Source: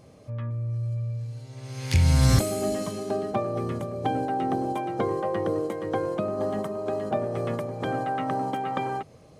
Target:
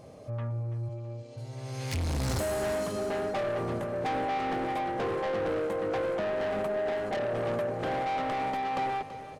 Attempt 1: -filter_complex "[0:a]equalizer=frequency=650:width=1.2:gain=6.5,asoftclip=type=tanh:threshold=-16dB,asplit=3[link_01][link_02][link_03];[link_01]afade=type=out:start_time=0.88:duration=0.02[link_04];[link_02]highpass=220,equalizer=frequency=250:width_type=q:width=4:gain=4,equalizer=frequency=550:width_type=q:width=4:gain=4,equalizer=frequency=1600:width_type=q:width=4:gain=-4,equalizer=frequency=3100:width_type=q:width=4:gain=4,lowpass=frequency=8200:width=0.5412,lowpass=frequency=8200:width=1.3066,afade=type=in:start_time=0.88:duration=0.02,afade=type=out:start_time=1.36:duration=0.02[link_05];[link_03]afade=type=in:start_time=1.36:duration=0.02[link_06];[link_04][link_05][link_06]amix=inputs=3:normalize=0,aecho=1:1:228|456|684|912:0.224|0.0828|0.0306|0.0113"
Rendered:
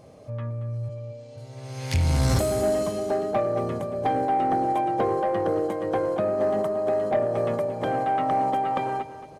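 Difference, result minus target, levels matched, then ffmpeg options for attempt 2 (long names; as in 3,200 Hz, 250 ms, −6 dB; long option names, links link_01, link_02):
soft clipping: distortion −10 dB; echo 104 ms early
-filter_complex "[0:a]equalizer=frequency=650:width=1.2:gain=6.5,asoftclip=type=tanh:threshold=-28dB,asplit=3[link_01][link_02][link_03];[link_01]afade=type=out:start_time=0.88:duration=0.02[link_04];[link_02]highpass=220,equalizer=frequency=250:width_type=q:width=4:gain=4,equalizer=frequency=550:width_type=q:width=4:gain=4,equalizer=frequency=1600:width_type=q:width=4:gain=-4,equalizer=frequency=3100:width_type=q:width=4:gain=4,lowpass=frequency=8200:width=0.5412,lowpass=frequency=8200:width=1.3066,afade=type=in:start_time=0.88:duration=0.02,afade=type=out:start_time=1.36:duration=0.02[link_05];[link_03]afade=type=in:start_time=1.36:duration=0.02[link_06];[link_04][link_05][link_06]amix=inputs=3:normalize=0,aecho=1:1:332|664|996|1328:0.224|0.0828|0.0306|0.0113"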